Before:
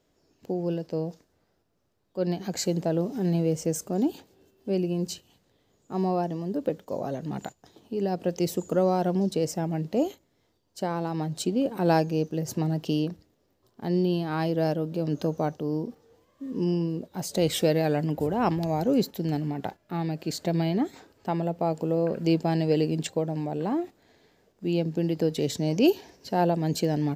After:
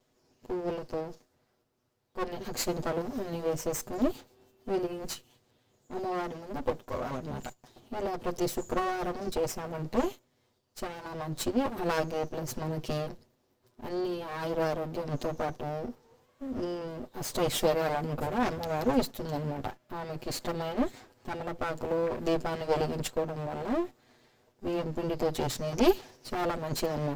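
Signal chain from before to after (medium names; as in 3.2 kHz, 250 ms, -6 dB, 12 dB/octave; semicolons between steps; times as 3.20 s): comb filter that takes the minimum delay 8.1 ms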